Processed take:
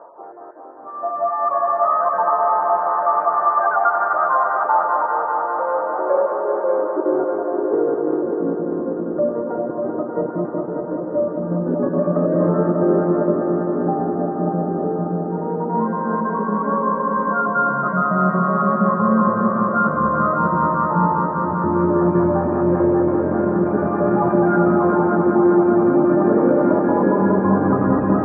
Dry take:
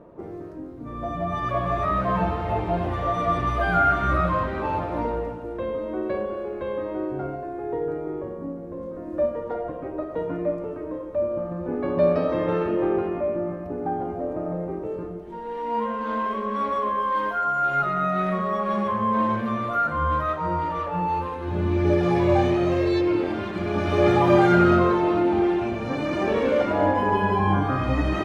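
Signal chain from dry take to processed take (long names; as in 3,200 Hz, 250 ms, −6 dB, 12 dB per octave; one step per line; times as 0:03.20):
time-frequency cells dropped at random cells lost 22%
elliptic low-pass filter 1,500 Hz, stop band 70 dB
reversed playback
upward compression, threshold −32 dBFS
reversed playback
brickwall limiter −17 dBFS, peak gain reduction 10 dB
high-pass filter sweep 820 Hz → 180 Hz, 0:05.22–0:08.72
on a send: echo machine with several playback heads 197 ms, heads all three, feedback 71%, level −9 dB
on the sum: level +4 dB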